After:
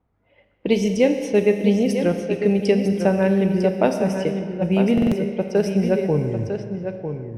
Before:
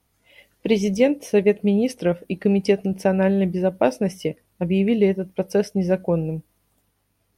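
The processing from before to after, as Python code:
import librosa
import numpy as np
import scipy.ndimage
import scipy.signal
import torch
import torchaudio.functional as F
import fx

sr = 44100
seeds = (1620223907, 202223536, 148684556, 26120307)

y = fx.tape_stop_end(x, sr, length_s=1.39)
y = y + 10.0 ** (-8.0 / 20.0) * np.pad(y, (int(951 * sr / 1000.0), 0))[:len(y)]
y = fx.rev_schroeder(y, sr, rt60_s=2.3, comb_ms=27, drr_db=7.0)
y = fx.env_lowpass(y, sr, base_hz=1200.0, full_db=-16.0)
y = fx.buffer_glitch(y, sr, at_s=(4.93,), block=2048, repeats=3)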